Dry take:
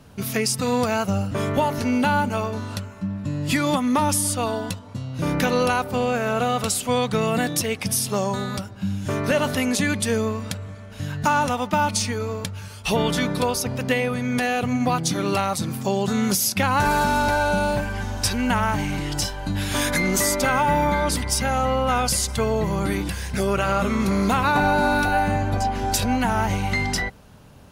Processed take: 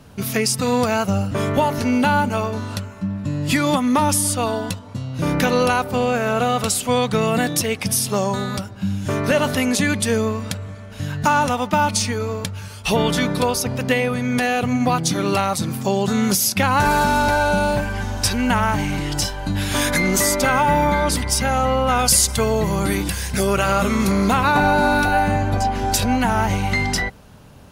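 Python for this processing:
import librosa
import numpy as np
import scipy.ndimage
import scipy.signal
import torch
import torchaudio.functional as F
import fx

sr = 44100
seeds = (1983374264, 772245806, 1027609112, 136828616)

y = fx.high_shelf(x, sr, hz=5000.0, db=7.5, at=(21.99, 24.12))
y = y * 10.0 ** (3.0 / 20.0)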